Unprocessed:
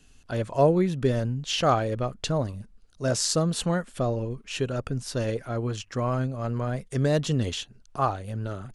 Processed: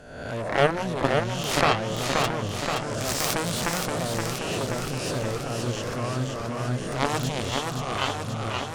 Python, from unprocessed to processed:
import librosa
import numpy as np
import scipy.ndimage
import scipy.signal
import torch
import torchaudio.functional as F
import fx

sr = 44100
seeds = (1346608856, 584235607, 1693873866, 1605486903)

y = fx.spec_swells(x, sr, rise_s=0.9)
y = fx.cheby_harmonics(y, sr, harmonics=(3, 4, 6, 7), levels_db=(-20, -9, -15, -13), full_scale_db=-5.5)
y = fx.echo_warbled(y, sr, ms=526, feedback_pct=68, rate_hz=2.8, cents=121, wet_db=-4.0)